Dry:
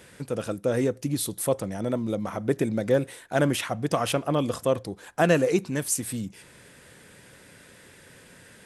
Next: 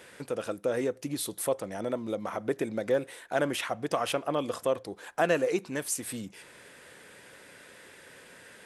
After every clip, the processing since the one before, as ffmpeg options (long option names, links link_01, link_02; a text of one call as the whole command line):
ffmpeg -i in.wav -filter_complex "[0:a]bass=frequency=250:gain=-12,treble=frequency=4000:gain=-4,asplit=2[link_01][link_02];[link_02]acompressor=threshold=-34dB:ratio=6,volume=1dB[link_03];[link_01][link_03]amix=inputs=2:normalize=0,volume=-5dB" out.wav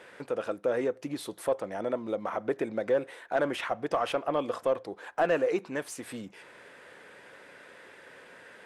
ffmpeg -i in.wav -filter_complex "[0:a]asplit=2[link_01][link_02];[link_02]highpass=frequency=720:poles=1,volume=13dB,asoftclip=type=tanh:threshold=-11dB[link_03];[link_01][link_03]amix=inputs=2:normalize=0,lowpass=frequency=1100:poles=1,volume=-6dB,volume=-1.5dB" out.wav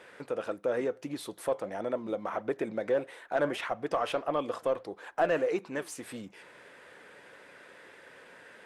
ffmpeg -i in.wav -af "flanger=delay=0.8:depth=6.1:regen=85:speed=1.6:shape=sinusoidal,volume=3dB" out.wav